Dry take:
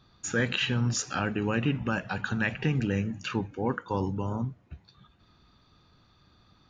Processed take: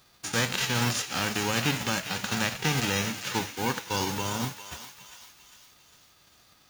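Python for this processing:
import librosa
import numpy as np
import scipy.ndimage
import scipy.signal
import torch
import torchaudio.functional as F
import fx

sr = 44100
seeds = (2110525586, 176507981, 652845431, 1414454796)

p1 = fx.envelope_flatten(x, sr, power=0.3)
y = p1 + fx.echo_thinned(p1, sr, ms=402, feedback_pct=55, hz=1200.0, wet_db=-9, dry=0)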